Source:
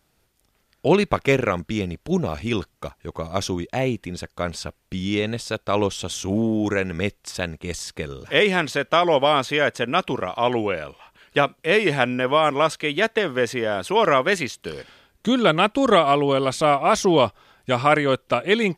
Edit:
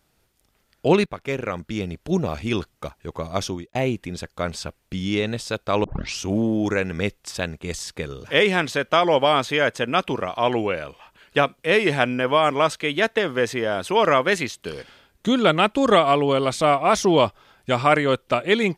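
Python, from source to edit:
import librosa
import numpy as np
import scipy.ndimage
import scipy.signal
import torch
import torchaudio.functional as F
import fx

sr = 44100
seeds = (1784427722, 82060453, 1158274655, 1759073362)

y = fx.edit(x, sr, fx.fade_in_from(start_s=1.06, length_s=1.02, floor_db=-14.5),
    fx.fade_out_span(start_s=3.29, length_s=0.46, curve='qsin'),
    fx.tape_start(start_s=5.84, length_s=0.37), tone=tone)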